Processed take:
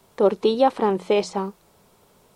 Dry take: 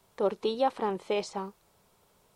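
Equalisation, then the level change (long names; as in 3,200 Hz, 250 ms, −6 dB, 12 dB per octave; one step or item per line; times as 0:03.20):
parametric band 250 Hz +4.5 dB 2.2 octaves
mains-hum notches 60/120/180 Hz
+7.0 dB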